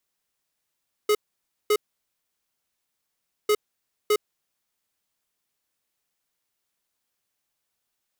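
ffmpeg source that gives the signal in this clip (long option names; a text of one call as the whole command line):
ffmpeg -f lavfi -i "aevalsrc='0.106*(2*lt(mod(421*t,1),0.5)-1)*clip(min(mod(mod(t,2.4),0.61),0.06-mod(mod(t,2.4),0.61))/0.005,0,1)*lt(mod(t,2.4),1.22)':duration=4.8:sample_rate=44100" out.wav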